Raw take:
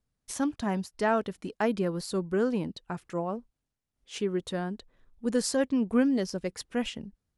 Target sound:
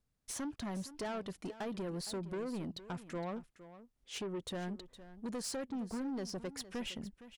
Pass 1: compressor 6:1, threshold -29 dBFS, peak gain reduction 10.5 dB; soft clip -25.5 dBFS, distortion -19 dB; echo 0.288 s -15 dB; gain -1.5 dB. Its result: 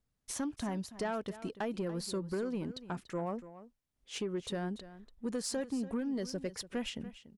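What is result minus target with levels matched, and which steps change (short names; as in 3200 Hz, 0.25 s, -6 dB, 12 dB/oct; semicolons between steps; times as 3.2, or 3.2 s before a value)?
echo 0.174 s early; soft clip: distortion -9 dB
change: soft clip -34 dBFS, distortion -10 dB; change: echo 0.462 s -15 dB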